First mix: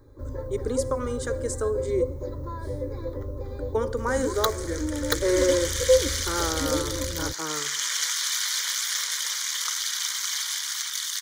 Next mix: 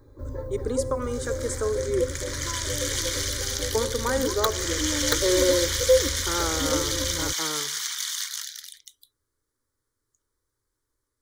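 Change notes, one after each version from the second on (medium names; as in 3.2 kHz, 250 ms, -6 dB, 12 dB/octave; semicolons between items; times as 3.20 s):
second sound: entry -2.95 s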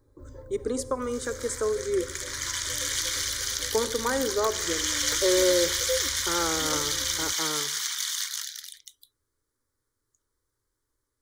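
first sound -11.0 dB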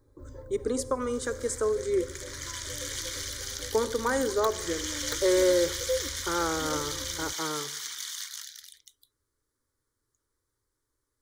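second sound -7.0 dB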